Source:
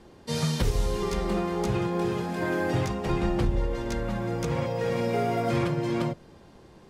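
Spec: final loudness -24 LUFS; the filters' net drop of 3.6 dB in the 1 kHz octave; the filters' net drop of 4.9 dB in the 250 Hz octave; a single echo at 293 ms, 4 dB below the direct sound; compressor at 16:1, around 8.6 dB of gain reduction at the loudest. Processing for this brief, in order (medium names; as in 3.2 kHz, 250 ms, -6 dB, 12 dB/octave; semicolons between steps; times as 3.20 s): peaking EQ 250 Hz -8 dB; peaking EQ 1 kHz -4.5 dB; compression 16:1, threshold -29 dBFS; delay 293 ms -4 dB; trim +9 dB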